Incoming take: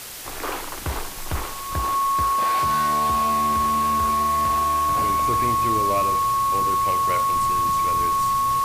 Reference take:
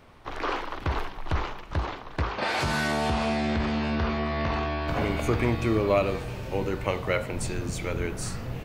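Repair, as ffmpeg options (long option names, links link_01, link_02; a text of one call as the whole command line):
ffmpeg -i in.wav -af "bandreject=frequency=1100:width=30,afwtdn=0.018,asetnsamples=nb_out_samples=441:pad=0,asendcmd='2.11 volume volume 4dB',volume=0dB" out.wav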